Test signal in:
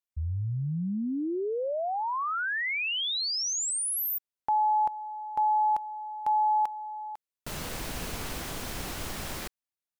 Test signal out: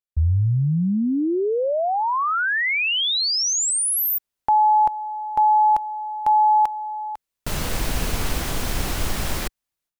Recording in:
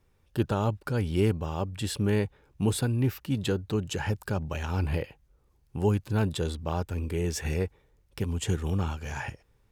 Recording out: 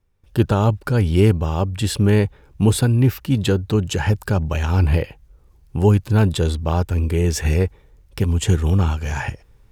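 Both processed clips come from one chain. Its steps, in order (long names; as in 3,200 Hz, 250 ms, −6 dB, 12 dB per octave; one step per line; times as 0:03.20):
low-shelf EQ 78 Hz +9 dB
noise gate with hold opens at −51 dBFS, hold 358 ms, range −14 dB
level +8.5 dB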